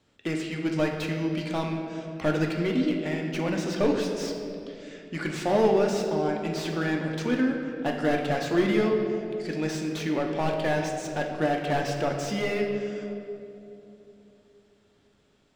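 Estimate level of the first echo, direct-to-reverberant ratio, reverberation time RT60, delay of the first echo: none, 1.0 dB, 3.0 s, none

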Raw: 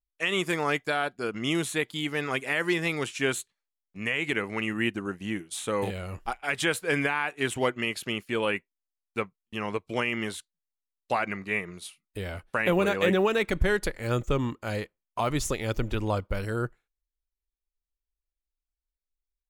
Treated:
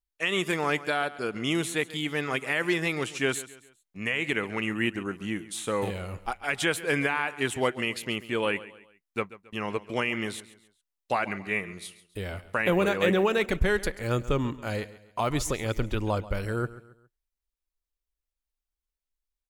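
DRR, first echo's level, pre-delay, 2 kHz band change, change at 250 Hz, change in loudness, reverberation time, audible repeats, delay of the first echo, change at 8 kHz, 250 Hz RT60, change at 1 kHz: none, -17.0 dB, none, 0.0 dB, 0.0 dB, 0.0 dB, none, 3, 0.137 s, 0.0 dB, none, 0.0 dB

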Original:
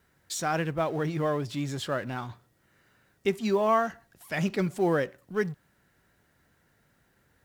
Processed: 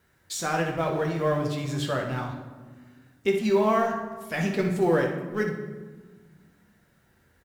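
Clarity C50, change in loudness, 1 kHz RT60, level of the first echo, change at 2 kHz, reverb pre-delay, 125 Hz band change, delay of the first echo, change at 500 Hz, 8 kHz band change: 5.0 dB, +2.5 dB, 1.3 s, -10.0 dB, +3.0 dB, 8 ms, +3.0 dB, 61 ms, +3.5 dB, +2.0 dB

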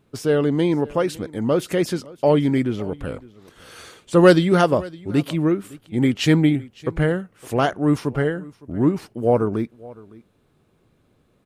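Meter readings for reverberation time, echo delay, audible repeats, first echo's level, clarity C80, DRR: none, 0.561 s, 1, -21.5 dB, none, none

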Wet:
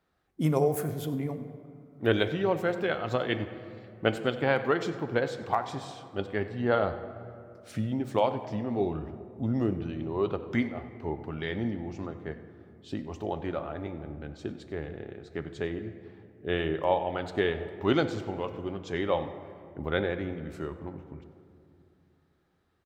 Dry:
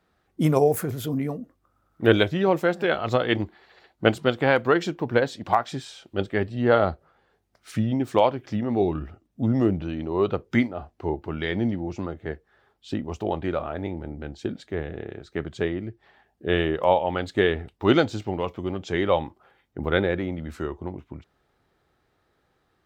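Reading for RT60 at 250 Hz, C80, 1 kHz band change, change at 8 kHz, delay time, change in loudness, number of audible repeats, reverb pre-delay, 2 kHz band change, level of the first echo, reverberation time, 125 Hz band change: 3.3 s, 11.5 dB, -6.0 dB, n/a, 95 ms, -6.0 dB, 1, 7 ms, -6.0 dB, -18.0 dB, 2.6 s, -5.0 dB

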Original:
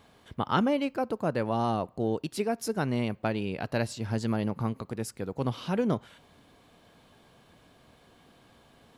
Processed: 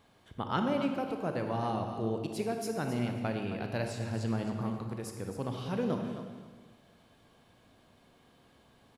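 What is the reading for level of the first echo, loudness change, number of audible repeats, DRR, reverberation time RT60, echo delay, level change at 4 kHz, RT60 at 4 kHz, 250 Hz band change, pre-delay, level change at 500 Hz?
-11.0 dB, -4.0 dB, 2, 3.5 dB, 1.4 s, 0.266 s, -4.5 dB, 1.3 s, -3.5 dB, 31 ms, -4.0 dB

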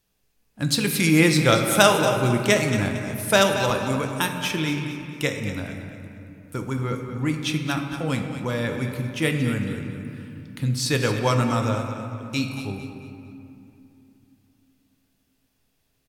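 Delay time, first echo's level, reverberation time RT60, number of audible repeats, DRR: 0.227 s, -11.5 dB, 2.8 s, 2, 3.5 dB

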